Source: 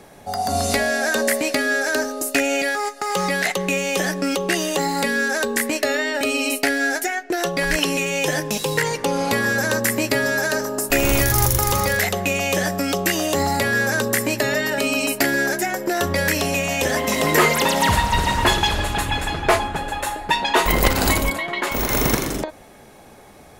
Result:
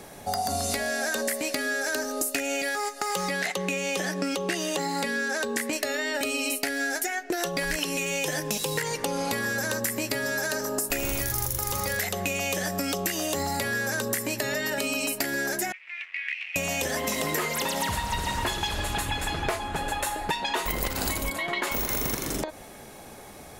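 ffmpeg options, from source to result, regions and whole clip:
-filter_complex "[0:a]asettb=1/sr,asplit=3[a][b][c];[a]atrim=end=3.304[d];[b]atrim=start=3.3:end=5.73,asetpts=PTS-STARTPTS,afade=t=in:d=0.004:c=qsin,afade=t=out:st=2.426:d=0.004:c=qsin,highpass=57,highshelf=f=9.6k:g=-11[e];[c]atrim=start=5.726[f];[d][e]acrossfade=d=0.004:c1=hsin:c2=qsin[g];[g][f]acrossfade=d=0.004:c1=qsin:c2=hsin,asettb=1/sr,asplit=3[h][i][j];[h]atrim=end=15.724[k];[i]atrim=start=15.72:end=16.56,asetpts=PTS-STARTPTS,afade=t=in:d=0.004:c=qsin,afade=t=out:st=0.836:d=0.004:c=qsin,acrusher=bits=3:dc=4:mix=0:aa=0.000001,asuperpass=centerf=2300:order=4:qfactor=3.3[l];[j]atrim=start=16.556[m];[k][l]acrossfade=d=0.004:c1=hsin:c2=qsin[n];[n][m]acrossfade=d=0.004:c1=qsin:c2=hsin,highshelf=f=4.5k:g=6,acompressor=threshold=-25dB:ratio=10"

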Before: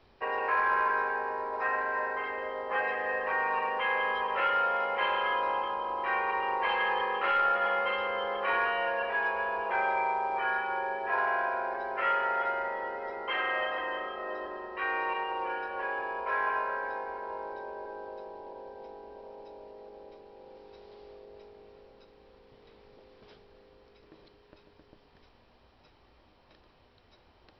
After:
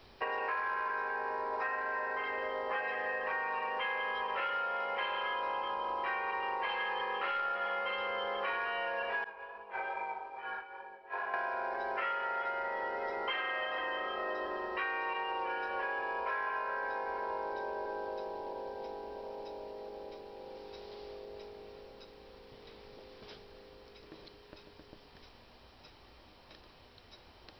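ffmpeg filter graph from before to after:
-filter_complex "[0:a]asettb=1/sr,asplit=3[a][b][c];[a]atrim=end=9.244[d];[b]atrim=start=9.24:end=11.34,asetpts=PTS-STARTPTS,afade=t=in:d=0.004:c=qsin,afade=t=out:st=2.096:d=0.004:c=qsin,lowpass=4.1k,agate=range=-33dB:threshold=-22dB:ratio=3:release=100:detection=peak,flanger=delay=19:depth=3.2:speed=2.4[e];[c]atrim=start=11.336[f];[d][e]acrossfade=d=0.004:c1=hsin:c2=qsin[g];[g][f]acrossfade=d=0.004:c1=qsin:c2=hsin,highshelf=f=4.1k:g=11,acompressor=threshold=-36dB:ratio=6,volume=3dB"

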